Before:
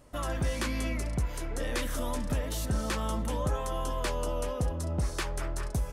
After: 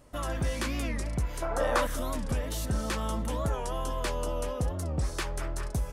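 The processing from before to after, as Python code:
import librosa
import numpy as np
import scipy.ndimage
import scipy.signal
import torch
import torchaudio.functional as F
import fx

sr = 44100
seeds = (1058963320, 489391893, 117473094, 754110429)

y = fx.band_shelf(x, sr, hz=910.0, db=13.5, octaves=1.7, at=(1.42, 1.87))
y = fx.record_warp(y, sr, rpm=45.0, depth_cents=160.0)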